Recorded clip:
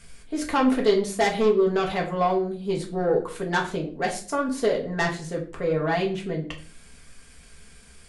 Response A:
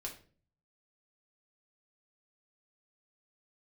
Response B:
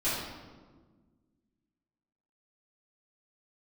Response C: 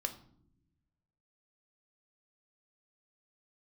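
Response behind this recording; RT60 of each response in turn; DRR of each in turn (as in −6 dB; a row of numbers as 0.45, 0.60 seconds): A; 0.45 s, 1.5 s, non-exponential decay; −1.5, −14.5, 6.5 decibels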